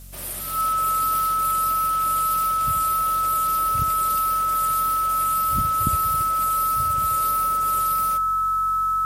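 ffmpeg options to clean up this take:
ffmpeg -i in.wav -af "bandreject=frequency=46.1:width_type=h:width=4,bandreject=frequency=92.2:width_type=h:width=4,bandreject=frequency=138.3:width_type=h:width=4,bandreject=frequency=184.4:width_type=h:width=4,bandreject=frequency=230.5:width_type=h:width=4,bandreject=frequency=1300:width=30,afftdn=noise_reduction=30:noise_floor=-22" out.wav

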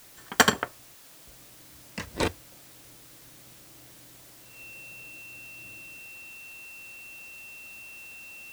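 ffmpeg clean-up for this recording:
ffmpeg -i in.wav -af "bandreject=frequency=2700:width=30,afwtdn=0.0025" out.wav

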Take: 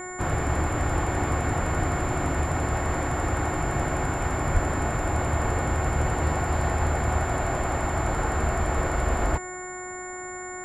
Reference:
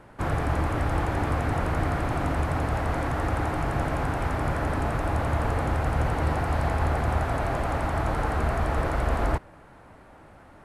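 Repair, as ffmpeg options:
ffmpeg -i in.wav -filter_complex "[0:a]bandreject=frequency=365.5:width_type=h:width=4,bandreject=frequency=731:width_type=h:width=4,bandreject=frequency=1096.5:width_type=h:width=4,bandreject=frequency=1462:width_type=h:width=4,bandreject=frequency=1827.5:width_type=h:width=4,bandreject=frequency=2193:width_type=h:width=4,bandreject=frequency=7200:width=30,asplit=3[link_01][link_02][link_03];[link_01]afade=type=out:start_time=4.53:duration=0.02[link_04];[link_02]highpass=frequency=140:width=0.5412,highpass=frequency=140:width=1.3066,afade=type=in:start_time=4.53:duration=0.02,afade=type=out:start_time=4.65:duration=0.02[link_05];[link_03]afade=type=in:start_time=4.65:duration=0.02[link_06];[link_04][link_05][link_06]amix=inputs=3:normalize=0" out.wav

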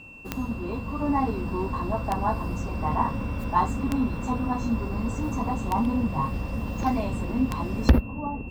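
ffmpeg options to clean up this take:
ffmpeg -i in.wav -af "adeclick=threshold=4,bandreject=frequency=2700:width=30" out.wav

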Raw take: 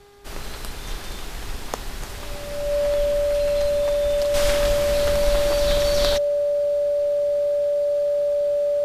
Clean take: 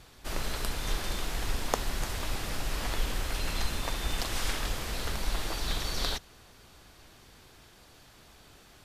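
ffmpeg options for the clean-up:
ffmpeg -i in.wav -af "bandreject=frequency=405.4:width_type=h:width=4,bandreject=frequency=810.8:width_type=h:width=4,bandreject=frequency=1216.2:width_type=h:width=4,bandreject=frequency=1621.6:width_type=h:width=4,bandreject=frequency=2027:width_type=h:width=4,bandreject=frequency=580:width=30,asetnsamples=nb_out_samples=441:pad=0,asendcmd='4.34 volume volume -7.5dB',volume=0dB" out.wav

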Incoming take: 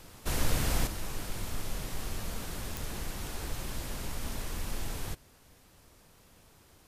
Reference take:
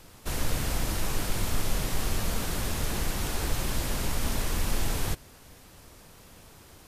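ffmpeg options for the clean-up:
ffmpeg -i in.wav -af "adeclick=threshold=4,asetnsamples=nb_out_samples=441:pad=0,asendcmd='0.87 volume volume 8dB',volume=0dB" out.wav

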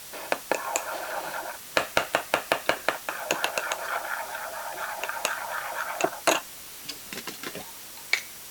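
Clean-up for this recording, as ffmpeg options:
ffmpeg -i in.wav -af "adeclick=threshold=4,bandreject=frequency=5800:width=30,afwtdn=0.0079" out.wav

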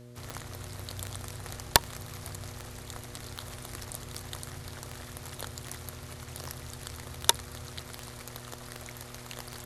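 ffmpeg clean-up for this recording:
ffmpeg -i in.wav -af "adeclick=threshold=4,bandreject=frequency=121.1:width_type=h:width=4,bandreject=frequency=242.2:width_type=h:width=4,bandreject=frequency=363.3:width_type=h:width=4,bandreject=frequency=484.4:width_type=h:width=4,bandreject=frequency=605.5:width_type=h:width=4" out.wav

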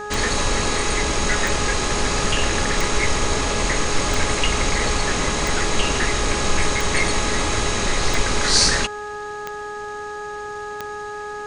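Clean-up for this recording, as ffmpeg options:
ffmpeg -i in.wav -af "adeclick=threshold=4,bandreject=frequency=417.4:width_type=h:width=4,bandreject=frequency=834.8:width_type=h:width=4,bandreject=frequency=1252.2:width_type=h:width=4,bandreject=frequency=1669.6:width_type=h:width=4" out.wav

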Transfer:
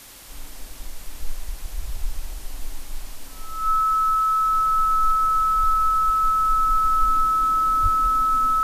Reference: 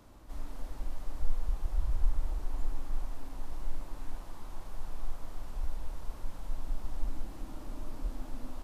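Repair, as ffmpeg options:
ffmpeg -i in.wav -filter_complex "[0:a]bandreject=frequency=1300:width=30,asplit=3[link_01][link_02][link_03];[link_01]afade=type=out:start_time=7.82:duration=0.02[link_04];[link_02]highpass=frequency=140:width=0.5412,highpass=frequency=140:width=1.3066,afade=type=in:start_time=7.82:duration=0.02,afade=type=out:start_time=7.94:duration=0.02[link_05];[link_03]afade=type=in:start_time=7.94:duration=0.02[link_06];[link_04][link_05][link_06]amix=inputs=3:normalize=0,afwtdn=0.0071,asetnsamples=nb_out_samples=441:pad=0,asendcmd='4.46 volume volume -5dB',volume=0dB" out.wav

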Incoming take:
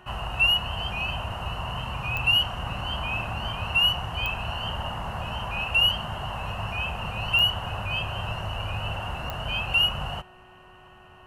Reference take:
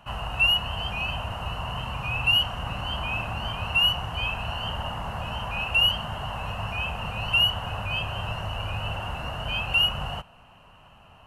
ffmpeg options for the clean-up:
ffmpeg -i in.wav -af "adeclick=threshold=4,bandreject=frequency=368.5:width_type=h:width=4,bandreject=frequency=737:width_type=h:width=4,bandreject=frequency=1105.5:width_type=h:width=4,bandreject=frequency=1474:width_type=h:width=4,bandreject=frequency=1842.5:width_type=h:width=4" out.wav

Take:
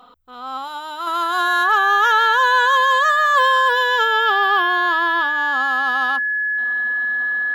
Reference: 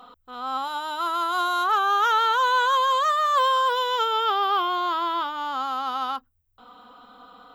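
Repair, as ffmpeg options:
ffmpeg -i in.wav -af "bandreject=frequency=1700:width=30,asetnsamples=nb_out_samples=441:pad=0,asendcmd='1.07 volume volume -4.5dB',volume=0dB" out.wav

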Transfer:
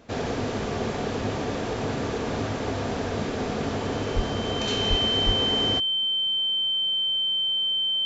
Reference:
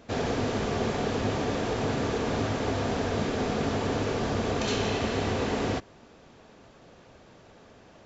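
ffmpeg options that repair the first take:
ffmpeg -i in.wav -filter_complex "[0:a]bandreject=frequency=3100:width=30,asplit=3[link_01][link_02][link_03];[link_01]afade=type=out:start_time=4.15:duration=0.02[link_04];[link_02]highpass=frequency=140:width=0.5412,highpass=frequency=140:width=1.3066,afade=type=in:start_time=4.15:duration=0.02,afade=type=out:start_time=4.27:duration=0.02[link_05];[link_03]afade=type=in:start_time=4.27:duration=0.02[link_06];[link_04][link_05][link_06]amix=inputs=3:normalize=0,asplit=3[link_07][link_08][link_09];[link_07]afade=type=out:start_time=4.89:duration=0.02[link_10];[link_08]highpass=frequency=140:width=0.5412,highpass=frequency=140:width=1.3066,afade=type=in:start_time=4.89:duration=0.02,afade=type=out:start_time=5.01:duration=0.02[link_11];[link_09]afade=type=in:start_time=5.01:duration=0.02[link_12];[link_10][link_11][link_12]amix=inputs=3:normalize=0,asplit=3[link_13][link_14][link_15];[link_13]afade=type=out:start_time=5.25:duration=0.02[link_16];[link_14]highpass=frequency=140:width=0.5412,highpass=frequency=140:width=1.3066,afade=type=in:start_time=5.25:duration=0.02,afade=type=out:start_time=5.37:duration=0.02[link_17];[link_15]afade=type=in:start_time=5.37:duration=0.02[link_18];[link_16][link_17][link_18]amix=inputs=3:normalize=0" out.wav

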